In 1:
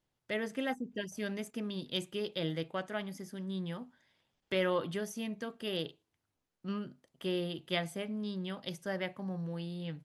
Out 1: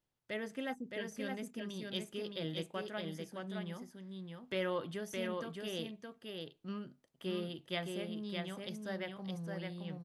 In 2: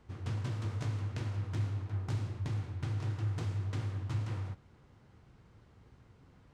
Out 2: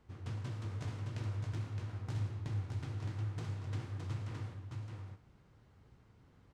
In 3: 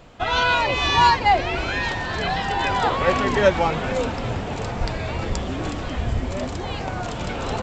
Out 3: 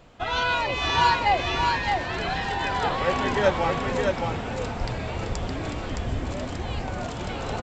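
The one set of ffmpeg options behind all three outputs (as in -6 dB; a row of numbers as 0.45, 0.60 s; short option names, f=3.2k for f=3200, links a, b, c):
-af "aecho=1:1:616:0.631,volume=-5dB"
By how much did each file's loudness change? -4.0, -4.5, -3.5 LU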